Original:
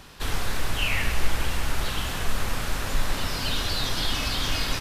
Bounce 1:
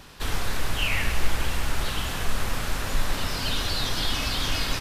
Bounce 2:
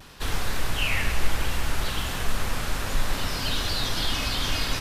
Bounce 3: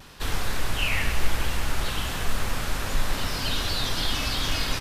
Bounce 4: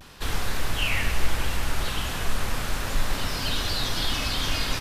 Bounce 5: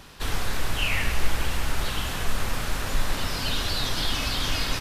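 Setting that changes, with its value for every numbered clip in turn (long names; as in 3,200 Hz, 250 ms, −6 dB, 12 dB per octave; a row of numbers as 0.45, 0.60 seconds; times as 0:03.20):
pitch vibrato, speed: 6.4, 0.64, 0.97, 0.36, 15 Hertz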